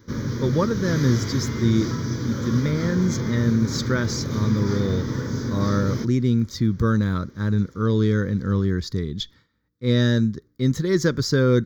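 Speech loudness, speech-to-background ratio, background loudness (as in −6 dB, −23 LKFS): −23.0 LKFS, 4.5 dB, −27.5 LKFS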